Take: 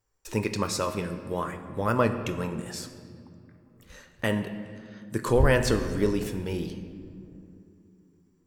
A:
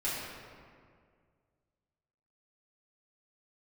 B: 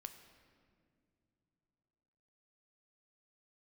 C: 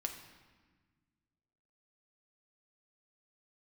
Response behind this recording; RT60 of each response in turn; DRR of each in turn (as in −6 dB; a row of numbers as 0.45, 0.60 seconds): B; 2.0 s, non-exponential decay, 1.4 s; −9.5, 7.5, 3.0 decibels